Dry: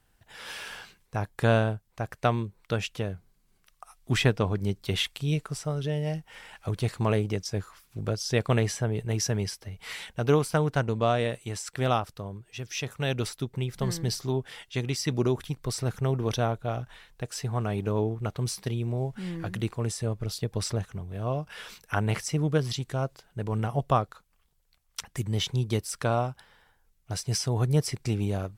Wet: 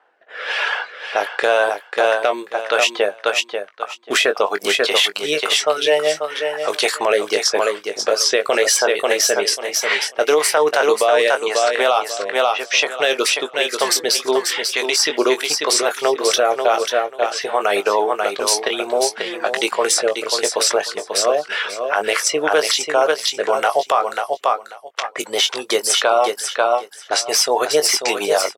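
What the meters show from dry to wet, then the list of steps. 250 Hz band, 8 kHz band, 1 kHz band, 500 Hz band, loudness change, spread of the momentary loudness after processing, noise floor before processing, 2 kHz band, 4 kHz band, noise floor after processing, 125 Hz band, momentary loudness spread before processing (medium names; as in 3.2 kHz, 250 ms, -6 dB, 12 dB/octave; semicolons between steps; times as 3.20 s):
+1.0 dB, +17.5 dB, +14.5 dB, +14.0 dB, +11.5 dB, 6 LU, -67 dBFS, +17.0 dB, +17.5 dB, -42 dBFS, under -20 dB, 12 LU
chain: tracing distortion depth 0.022 ms; level-controlled noise filter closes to 1.3 kHz, open at -25.5 dBFS; high-pass 510 Hz 24 dB/octave; reverb removal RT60 0.53 s; rotary cabinet horn 1 Hz, later 7.5 Hz, at 24.56 s; doubling 20 ms -9.5 dB; on a send: feedback delay 539 ms, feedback 18%, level -7.5 dB; on the sum: loudness maximiser +28 dB; trim -4.5 dB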